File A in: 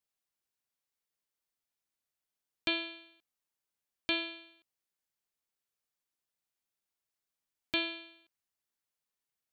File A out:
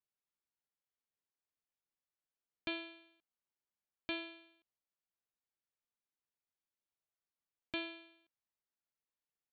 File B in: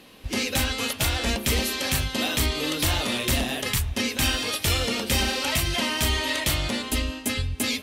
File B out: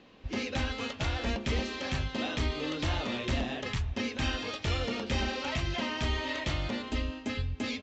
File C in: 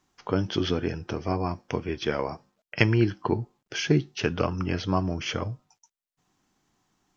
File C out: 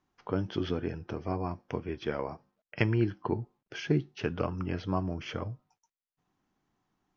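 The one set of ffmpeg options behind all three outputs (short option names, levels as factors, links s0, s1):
-af "aresample=16000,aresample=44100,aemphasis=mode=reproduction:type=75fm,volume=0.501"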